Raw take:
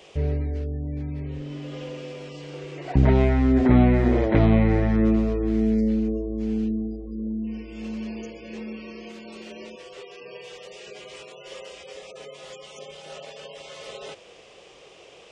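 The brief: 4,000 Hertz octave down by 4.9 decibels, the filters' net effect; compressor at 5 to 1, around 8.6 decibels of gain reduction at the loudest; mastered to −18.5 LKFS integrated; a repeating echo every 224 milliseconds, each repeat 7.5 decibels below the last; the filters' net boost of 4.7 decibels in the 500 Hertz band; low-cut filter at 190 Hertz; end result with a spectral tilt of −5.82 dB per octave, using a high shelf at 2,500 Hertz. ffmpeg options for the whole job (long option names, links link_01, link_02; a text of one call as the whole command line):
ffmpeg -i in.wav -af "highpass=190,equalizer=frequency=500:width_type=o:gain=6.5,highshelf=frequency=2500:gain=-3.5,equalizer=frequency=4000:width_type=o:gain=-4,acompressor=threshold=-23dB:ratio=5,aecho=1:1:224|448|672|896|1120:0.422|0.177|0.0744|0.0312|0.0131,volume=11dB" out.wav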